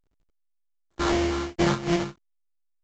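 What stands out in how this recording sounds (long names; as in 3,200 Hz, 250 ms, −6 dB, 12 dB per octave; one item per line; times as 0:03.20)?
a buzz of ramps at a fixed pitch in blocks of 128 samples
phaser sweep stages 12, 2.7 Hz, lowest notch 680–1,400 Hz
aliases and images of a low sample rate 2,600 Hz, jitter 20%
A-law companding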